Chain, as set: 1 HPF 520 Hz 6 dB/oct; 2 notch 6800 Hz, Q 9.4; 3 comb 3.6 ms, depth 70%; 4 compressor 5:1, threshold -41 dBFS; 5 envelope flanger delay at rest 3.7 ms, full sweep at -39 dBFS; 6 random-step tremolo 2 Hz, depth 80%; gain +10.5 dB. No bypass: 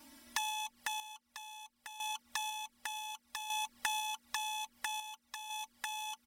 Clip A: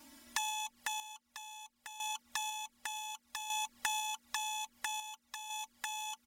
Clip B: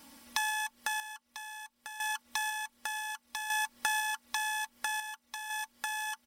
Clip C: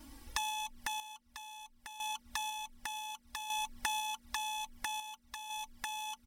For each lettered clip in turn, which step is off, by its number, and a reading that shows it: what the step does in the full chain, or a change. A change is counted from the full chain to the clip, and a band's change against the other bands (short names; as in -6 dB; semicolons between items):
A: 2, 8 kHz band +3.0 dB; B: 5, 2 kHz band +6.0 dB; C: 1, crest factor change +2.0 dB